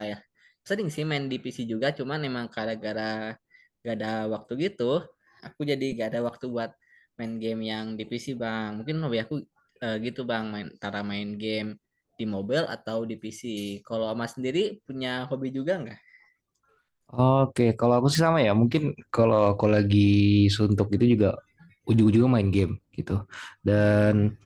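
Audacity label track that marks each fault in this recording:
18.150000	18.150000	pop

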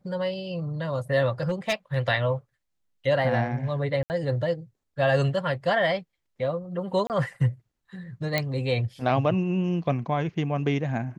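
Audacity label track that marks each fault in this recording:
1.410000	1.970000	clipped -19.5 dBFS
4.030000	4.100000	dropout 69 ms
7.070000	7.100000	dropout 28 ms
8.380000	8.380000	pop -10 dBFS

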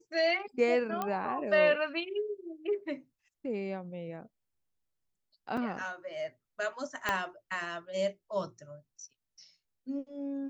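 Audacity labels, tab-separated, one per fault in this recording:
1.020000	1.020000	pop -19 dBFS
5.570000	5.570000	dropout 4.1 ms
7.090000	7.090000	pop -14 dBFS

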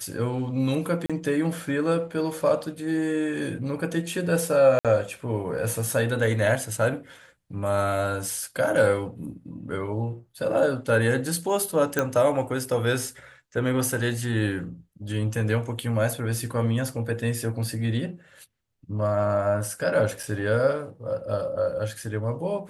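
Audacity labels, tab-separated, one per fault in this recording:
1.060000	1.100000	dropout 36 ms
4.790000	4.850000	dropout 57 ms
11.990000	11.990000	pop -9 dBFS
20.230000	20.230000	dropout 4 ms

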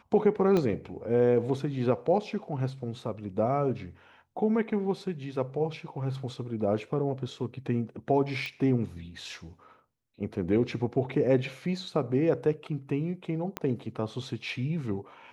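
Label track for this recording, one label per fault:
0.570000	0.570000	pop -16 dBFS
8.460000	8.460000	pop -22 dBFS
13.570000	13.570000	pop -16 dBFS

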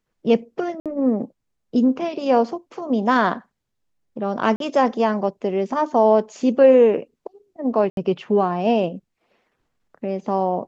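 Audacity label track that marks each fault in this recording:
0.800000	0.860000	dropout 57 ms
4.560000	4.600000	dropout 42 ms
7.900000	7.970000	dropout 72 ms

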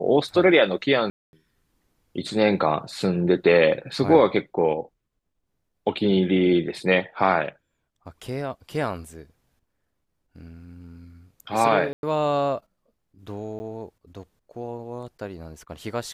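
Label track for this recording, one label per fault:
1.100000	1.330000	dropout 231 ms
11.930000	12.030000	dropout 101 ms
13.590000	13.600000	dropout 10 ms

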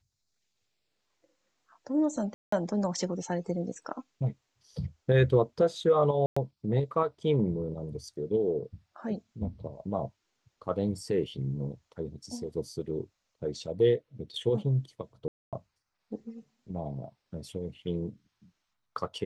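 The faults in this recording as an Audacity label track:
2.340000	2.520000	dropout 184 ms
6.260000	6.370000	dropout 105 ms
15.280000	15.530000	dropout 247 ms

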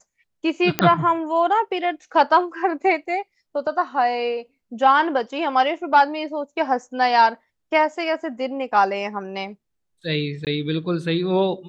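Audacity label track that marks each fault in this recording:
0.790000	0.790000	pop -2 dBFS
10.450000	10.470000	dropout 18 ms

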